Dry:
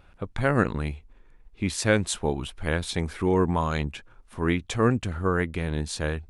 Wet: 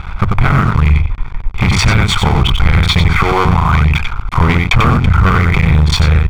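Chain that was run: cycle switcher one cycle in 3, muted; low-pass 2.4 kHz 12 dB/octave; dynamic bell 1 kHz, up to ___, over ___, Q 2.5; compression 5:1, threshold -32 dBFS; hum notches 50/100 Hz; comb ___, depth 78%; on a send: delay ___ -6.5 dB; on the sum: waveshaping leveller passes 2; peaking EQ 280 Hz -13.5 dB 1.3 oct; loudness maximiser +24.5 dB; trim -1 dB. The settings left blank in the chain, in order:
-6 dB, -43 dBFS, 0.9 ms, 92 ms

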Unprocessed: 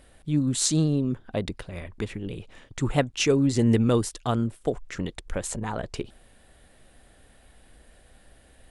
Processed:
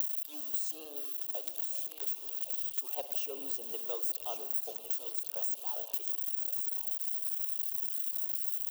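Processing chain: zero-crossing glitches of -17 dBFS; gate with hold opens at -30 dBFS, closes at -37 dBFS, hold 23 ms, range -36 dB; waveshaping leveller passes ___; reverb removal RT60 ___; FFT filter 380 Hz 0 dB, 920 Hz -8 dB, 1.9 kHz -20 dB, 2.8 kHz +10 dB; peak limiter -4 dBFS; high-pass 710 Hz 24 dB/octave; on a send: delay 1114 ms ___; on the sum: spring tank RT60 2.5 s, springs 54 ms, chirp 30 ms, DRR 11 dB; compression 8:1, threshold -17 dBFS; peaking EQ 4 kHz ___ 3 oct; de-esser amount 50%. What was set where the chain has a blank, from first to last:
1, 0.84 s, -11.5 dB, -14.5 dB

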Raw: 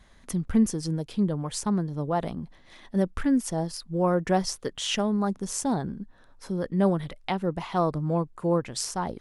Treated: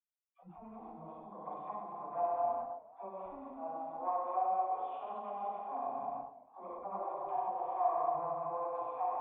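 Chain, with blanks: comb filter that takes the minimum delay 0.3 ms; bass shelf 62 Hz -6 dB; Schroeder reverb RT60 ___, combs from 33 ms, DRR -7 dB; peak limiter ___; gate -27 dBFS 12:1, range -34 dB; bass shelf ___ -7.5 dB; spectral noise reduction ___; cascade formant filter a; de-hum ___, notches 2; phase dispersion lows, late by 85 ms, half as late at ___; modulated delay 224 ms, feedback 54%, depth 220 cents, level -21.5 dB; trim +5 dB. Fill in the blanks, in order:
2.4 s, -17 dBFS, 460 Hz, 24 dB, 105.7 Hz, 600 Hz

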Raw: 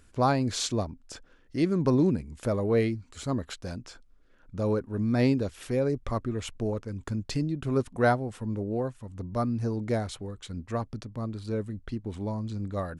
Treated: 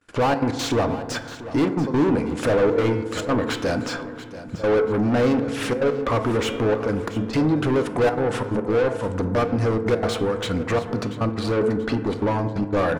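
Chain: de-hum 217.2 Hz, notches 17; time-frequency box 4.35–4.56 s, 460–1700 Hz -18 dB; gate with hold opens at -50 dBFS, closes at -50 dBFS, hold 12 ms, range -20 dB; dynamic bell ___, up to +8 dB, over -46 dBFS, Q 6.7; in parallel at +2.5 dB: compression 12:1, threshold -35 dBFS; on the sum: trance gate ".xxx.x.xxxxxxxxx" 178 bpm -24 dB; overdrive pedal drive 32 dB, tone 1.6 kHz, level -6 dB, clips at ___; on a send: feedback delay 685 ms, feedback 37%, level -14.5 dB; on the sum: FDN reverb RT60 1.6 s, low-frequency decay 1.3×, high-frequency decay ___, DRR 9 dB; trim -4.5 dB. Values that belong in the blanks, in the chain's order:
480 Hz, -8 dBFS, 0.3×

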